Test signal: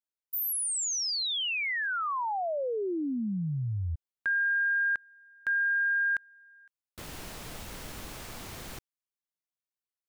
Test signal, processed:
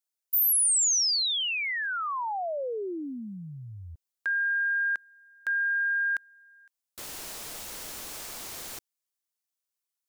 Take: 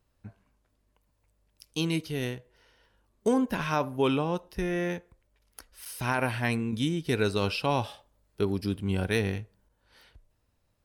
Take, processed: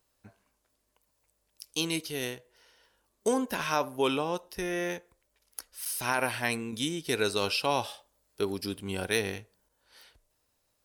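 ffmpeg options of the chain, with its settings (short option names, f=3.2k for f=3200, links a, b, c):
-af "bass=f=250:g=-11,treble=f=4k:g=8"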